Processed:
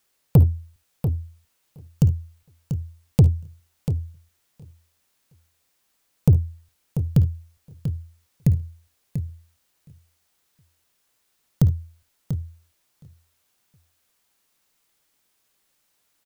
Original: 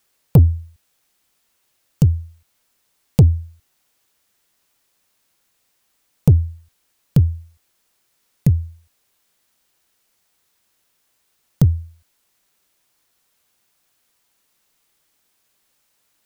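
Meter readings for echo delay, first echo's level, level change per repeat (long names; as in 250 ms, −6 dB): 54 ms, −16.5 dB, repeats not evenly spaced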